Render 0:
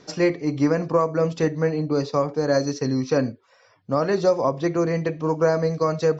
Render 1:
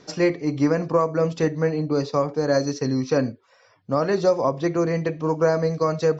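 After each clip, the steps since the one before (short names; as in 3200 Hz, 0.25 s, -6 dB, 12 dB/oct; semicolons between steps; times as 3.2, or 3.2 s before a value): nothing audible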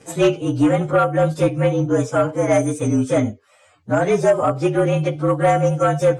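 inharmonic rescaling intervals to 113%; sine folder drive 3 dB, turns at -8.5 dBFS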